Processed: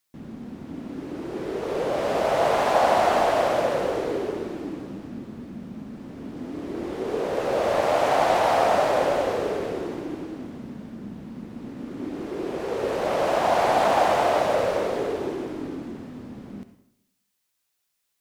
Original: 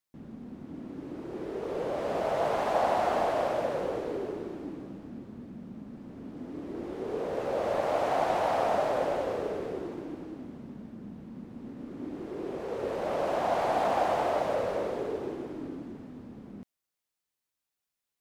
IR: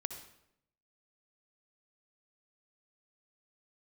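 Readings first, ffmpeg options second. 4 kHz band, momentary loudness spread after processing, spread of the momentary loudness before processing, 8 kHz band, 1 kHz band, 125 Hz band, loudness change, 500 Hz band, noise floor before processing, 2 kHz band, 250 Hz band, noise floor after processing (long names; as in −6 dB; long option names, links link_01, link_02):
+10.5 dB, 18 LU, 17 LU, +11.0 dB, +7.0 dB, +6.0 dB, +7.0 dB, +6.5 dB, below −85 dBFS, +9.0 dB, +6.0 dB, −76 dBFS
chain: -filter_complex "[0:a]asplit=2[link_01][link_02];[link_02]tiltshelf=frequency=1200:gain=-4.5[link_03];[1:a]atrim=start_sample=2205[link_04];[link_03][link_04]afir=irnorm=-1:irlink=0,volume=5dB[link_05];[link_01][link_05]amix=inputs=2:normalize=0"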